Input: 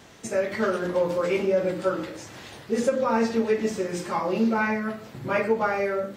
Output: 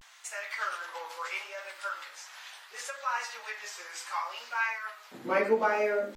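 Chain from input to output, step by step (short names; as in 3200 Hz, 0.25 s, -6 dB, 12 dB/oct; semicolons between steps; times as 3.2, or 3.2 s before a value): HPF 970 Hz 24 dB/oct, from 5.12 s 240 Hz; vibrato 0.72 Hz 100 cents; gain -2 dB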